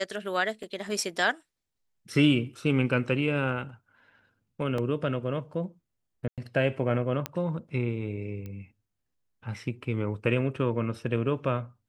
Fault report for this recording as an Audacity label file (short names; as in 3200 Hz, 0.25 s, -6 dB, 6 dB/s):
0.630000	0.630000	gap 3.4 ms
4.780000	4.780000	gap 3.2 ms
6.280000	6.380000	gap 97 ms
7.260000	7.260000	pop -14 dBFS
8.460000	8.460000	pop -27 dBFS